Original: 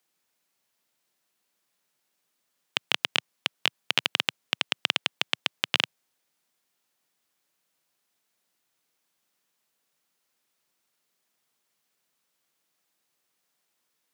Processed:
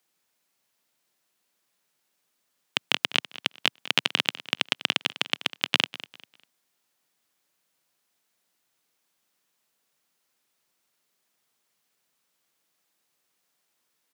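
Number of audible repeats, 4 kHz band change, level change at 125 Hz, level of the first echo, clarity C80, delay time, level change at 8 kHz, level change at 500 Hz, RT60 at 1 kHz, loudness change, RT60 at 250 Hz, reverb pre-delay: 2, +1.5 dB, +3.5 dB, -17.0 dB, none, 0.199 s, +1.5 dB, +2.5 dB, none, +1.5 dB, none, none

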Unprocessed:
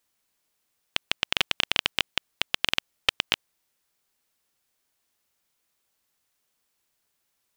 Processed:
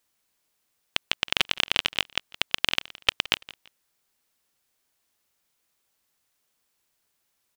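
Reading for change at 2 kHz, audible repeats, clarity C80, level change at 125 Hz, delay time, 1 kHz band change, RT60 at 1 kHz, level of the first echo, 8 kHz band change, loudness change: +1.0 dB, 2, none, +1.0 dB, 0.168 s, +1.0 dB, none, -20.0 dB, +1.0 dB, +1.0 dB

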